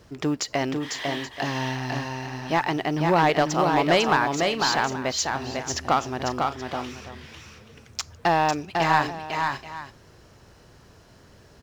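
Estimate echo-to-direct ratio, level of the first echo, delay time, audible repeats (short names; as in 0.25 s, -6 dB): -3.5 dB, -4.0 dB, 0.499 s, 3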